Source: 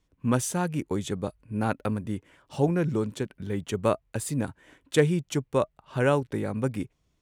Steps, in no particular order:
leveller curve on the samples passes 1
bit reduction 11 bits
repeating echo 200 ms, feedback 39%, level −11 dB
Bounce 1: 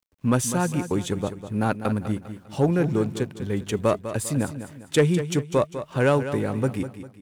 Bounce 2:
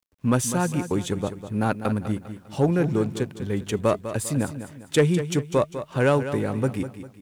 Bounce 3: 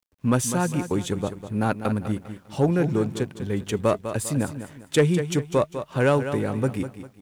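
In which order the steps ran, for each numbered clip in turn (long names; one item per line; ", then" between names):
leveller curve on the samples, then bit reduction, then repeating echo
leveller curve on the samples, then repeating echo, then bit reduction
repeating echo, then leveller curve on the samples, then bit reduction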